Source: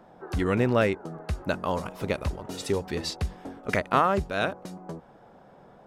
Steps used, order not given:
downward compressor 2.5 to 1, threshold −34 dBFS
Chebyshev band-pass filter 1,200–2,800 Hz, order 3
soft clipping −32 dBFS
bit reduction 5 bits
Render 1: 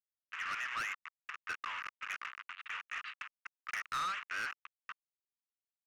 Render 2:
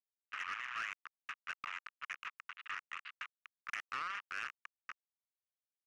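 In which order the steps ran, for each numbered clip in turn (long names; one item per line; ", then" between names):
bit reduction, then Chebyshev band-pass filter, then soft clipping, then downward compressor
downward compressor, then bit reduction, then Chebyshev band-pass filter, then soft clipping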